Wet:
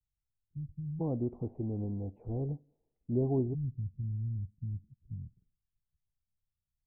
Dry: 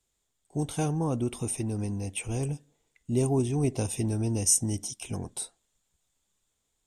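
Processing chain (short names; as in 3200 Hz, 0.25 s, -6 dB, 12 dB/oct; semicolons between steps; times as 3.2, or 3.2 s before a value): inverse Chebyshev low-pass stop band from 870 Hz, stop band 80 dB, from 0.99 s stop band from 4200 Hz, from 3.53 s stop band from 920 Hz; gain -4 dB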